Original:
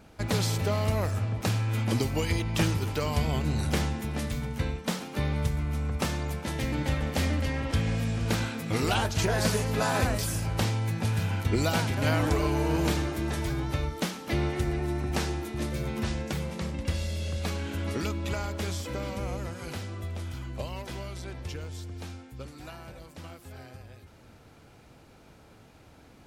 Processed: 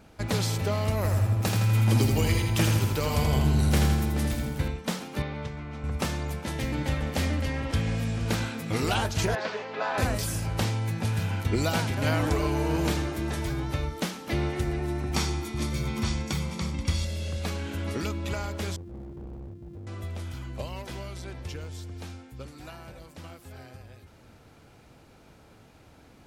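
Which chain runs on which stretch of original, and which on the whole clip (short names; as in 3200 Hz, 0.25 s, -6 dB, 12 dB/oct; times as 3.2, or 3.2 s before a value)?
0.96–4.68 high shelf 11000 Hz +10 dB + feedback echo 82 ms, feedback 59%, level -4.5 dB + mismatched tape noise reduction decoder only
5.22–5.84 HPF 260 Hz 6 dB/oct + air absorption 140 m
9.35–9.98 BPF 470–3900 Hz + air absorption 120 m
15.14–17.05 bell 5400 Hz +5.5 dB 1.5 oct + comb 0.9 ms, depth 43%
18.76–19.87 sample sorter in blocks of 128 samples + EQ curve 130 Hz 0 dB, 400 Hz -6 dB, 720 Hz -29 dB + hard clip -37.5 dBFS
whole clip: dry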